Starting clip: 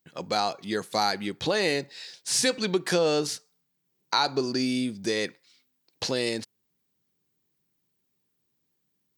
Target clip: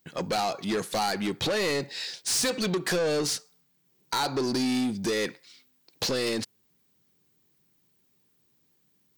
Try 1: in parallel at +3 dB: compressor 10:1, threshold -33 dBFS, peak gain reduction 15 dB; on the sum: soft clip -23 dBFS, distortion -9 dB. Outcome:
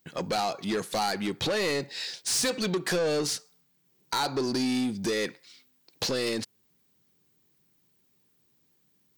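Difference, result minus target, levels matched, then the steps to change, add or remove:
compressor: peak gain reduction +5.5 dB
change: compressor 10:1, threshold -27 dBFS, peak gain reduction 9.5 dB

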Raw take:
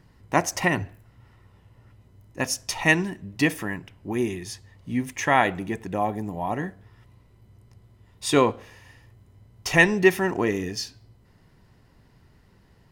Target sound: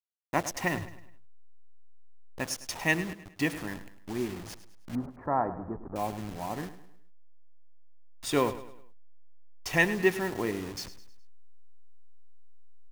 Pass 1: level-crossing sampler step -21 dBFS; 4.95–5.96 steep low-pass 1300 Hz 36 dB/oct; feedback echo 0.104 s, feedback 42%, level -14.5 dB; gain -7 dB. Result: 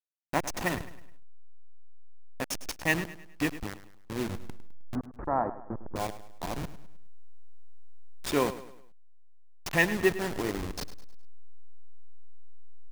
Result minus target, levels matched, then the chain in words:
level-crossing sampler: distortion +9 dB
level-crossing sampler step -30 dBFS; 4.95–5.96 steep low-pass 1300 Hz 36 dB/oct; feedback echo 0.104 s, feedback 42%, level -14.5 dB; gain -7 dB

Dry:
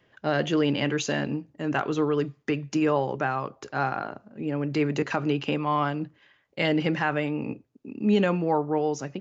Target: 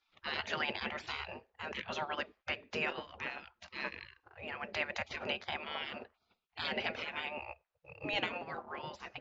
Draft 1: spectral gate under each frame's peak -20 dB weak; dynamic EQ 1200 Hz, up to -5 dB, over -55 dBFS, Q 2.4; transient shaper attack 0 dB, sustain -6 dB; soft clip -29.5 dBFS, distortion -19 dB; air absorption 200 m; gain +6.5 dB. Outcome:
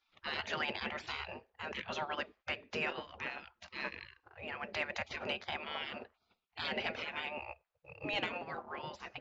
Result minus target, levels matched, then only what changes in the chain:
soft clip: distortion +14 dB
change: soft clip -21 dBFS, distortion -33 dB

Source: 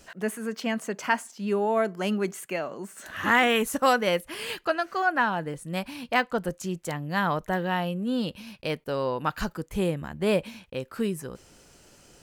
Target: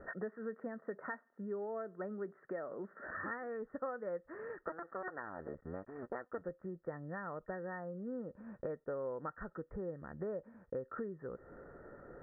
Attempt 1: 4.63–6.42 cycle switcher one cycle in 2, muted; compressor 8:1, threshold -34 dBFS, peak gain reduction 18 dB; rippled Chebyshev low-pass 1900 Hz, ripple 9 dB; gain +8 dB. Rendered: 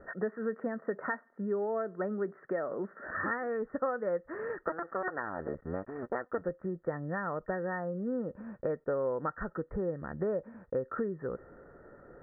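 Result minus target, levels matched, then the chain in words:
compressor: peak gain reduction -8.5 dB
4.63–6.42 cycle switcher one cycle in 2, muted; compressor 8:1, threshold -43.5 dBFS, peak gain reduction 26 dB; rippled Chebyshev low-pass 1900 Hz, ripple 9 dB; gain +8 dB

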